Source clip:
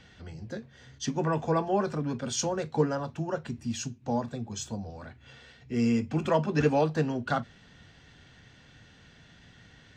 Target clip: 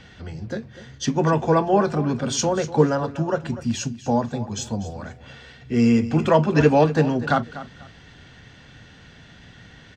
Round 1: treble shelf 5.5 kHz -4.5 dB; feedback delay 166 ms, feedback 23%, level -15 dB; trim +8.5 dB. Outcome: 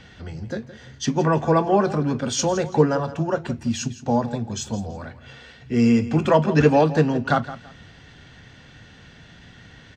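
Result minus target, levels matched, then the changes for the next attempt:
echo 79 ms early
change: feedback delay 245 ms, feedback 23%, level -15 dB

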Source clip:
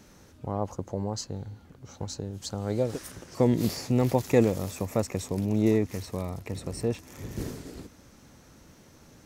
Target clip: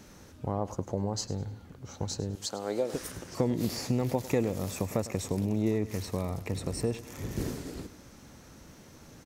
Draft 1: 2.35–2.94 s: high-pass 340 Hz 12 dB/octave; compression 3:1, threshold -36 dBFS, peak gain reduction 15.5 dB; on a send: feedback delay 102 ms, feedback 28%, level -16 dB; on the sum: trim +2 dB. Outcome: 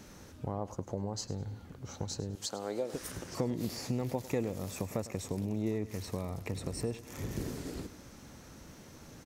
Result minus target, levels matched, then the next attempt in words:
compression: peak gain reduction +5.5 dB
2.35–2.94 s: high-pass 340 Hz 12 dB/octave; compression 3:1, threshold -28 dBFS, peak gain reduction 10 dB; on a send: feedback delay 102 ms, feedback 28%, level -16 dB; on the sum: trim +2 dB

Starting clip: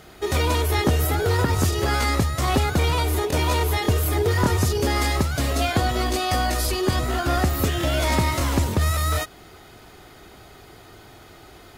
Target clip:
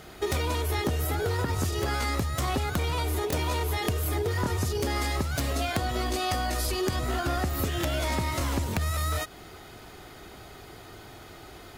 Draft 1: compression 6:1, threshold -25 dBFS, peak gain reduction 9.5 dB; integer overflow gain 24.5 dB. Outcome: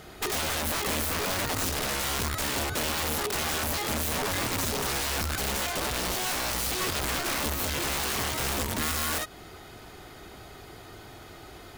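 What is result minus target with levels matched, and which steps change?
integer overflow: distortion +31 dB
change: integer overflow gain 18 dB

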